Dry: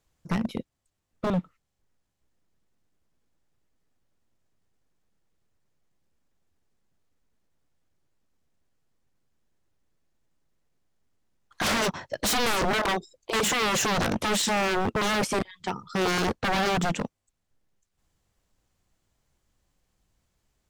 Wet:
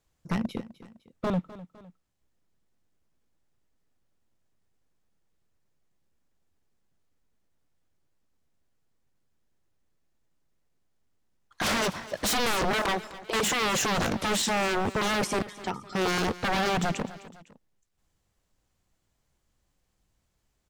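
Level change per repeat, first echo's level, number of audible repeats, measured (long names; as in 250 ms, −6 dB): −6.5 dB, −17.0 dB, 2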